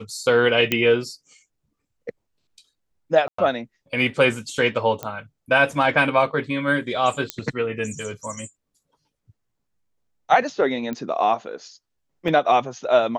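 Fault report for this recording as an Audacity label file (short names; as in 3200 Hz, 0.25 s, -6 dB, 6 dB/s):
0.720000	0.720000	pop -6 dBFS
3.280000	3.380000	gap 0.104 s
5.030000	5.030000	pop -13 dBFS
7.300000	7.300000	pop -8 dBFS
10.930000	10.930000	pop -17 dBFS
12.280000	12.280000	gap 3.3 ms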